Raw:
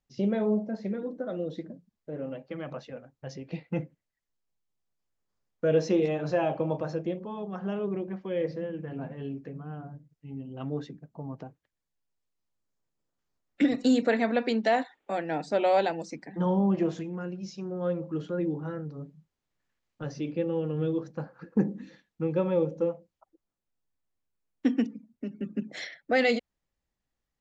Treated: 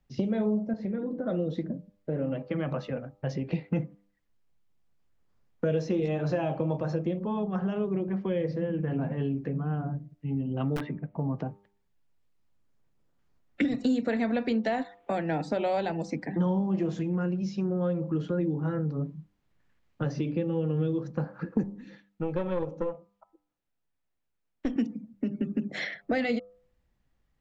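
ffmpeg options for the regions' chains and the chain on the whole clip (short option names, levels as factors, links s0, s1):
-filter_complex "[0:a]asettb=1/sr,asplit=3[s0][s1][s2];[s0]atrim=end=0.734[s3];[s1]atrim=start=0.73:end=1.26,asetpts=PTS-STARTPTS,afade=t=in:d=0.004:c=qsin,afade=t=out:st=0.526:d=0.004:c=qsin,highshelf=f=6300:g=-9,acompressor=threshold=0.00891:ratio=2:attack=3.2:release=140:knee=1:detection=peak[s4];[s2]atrim=start=1.256[s5];[s3][s4]acrossfade=d=0.004:c1=hsin:c2=qsin[s6];[s6][s5]acrossfade=d=0.004:c1=qsin:c2=hsin,asettb=1/sr,asplit=3[s7][s8][s9];[s7]atrim=end=10.764[s10];[s8]atrim=start=10.76:end=11.17,asetpts=PTS-STARTPTS,afade=t=in:d=0.004:c=qsin,afade=t=out:st=0.406:d=0.004:c=qsin,lowpass=f=2200:t=q:w=2.9,aeval=exprs='(mod(28.2*val(0)+1,2)-1)/28.2':c=same[s11];[s9]atrim=start=11.166[s12];[s10][s11]acrossfade=d=0.004:c1=hsin:c2=qsin[s13];[s13][s12]acrossfade=d=0.004:c1=qsin:c2=hsin,asettb=1/sr,asplit=3[s14][s15][s16];[s14]atrim=end=21.634[s17];[s15]atrim=start=21.63:end=24.76,asetpts=PTS-STARTPTS,afade=t=in:d=0.004:c=qsin,afade=t=out:st=3.126:d=0.004:c=qsin,lowshelf=f=280:g=-9,bandreject=f=1100:w=19,aeval=exprs='(tanh(14.1*val(0)+0.7)-tanh(0.7))/14.1':c=same[s18];[s16]atrim=start=24.756[s19];[s17][s18]acrossfade=d=0.004:c1=hsin:c2=qsin[s20];[s20][s19]acrossfade=d=0.004:c1=qsin:c2=hsin,bass=f=250:g=6,treble=f=4000:g=-9,acrossover=split=150|4400[s21][s22][s23];[s21]acompressor=threshold=0.00501:ratio=4[s24];[s22]acompressor=threshold=0.0158:ratio=4[s25];[s23]acompressor=threshold=0.00112:ratio=4[s26];[s24][s25][s26]amix=inputs=3:normalize=0,bandreject=f=99.88:t=h:w=4,bandreject=f=199.76:t=h:w=4,bandreject=f=299.64:t=h:w=4,bandreject=f=399.52:t=h:w=4,bandreject=f=499.4:t=h:w=4,bandreject=f=599.28:t=h:w=4,bandreject=f=699.16:t=h:w=4,bandreject=f=799.04:t=h:w=4,bandreject=f=898.92:t=h:w=4,bandreject=f=998.8:t=h:w=4,bandreject=f=1098.68:t=h:w=4,bandreject=f=1198.56:t=h:w=4,bandreject=f=1298.44:t=h:w=4,volume=2.51"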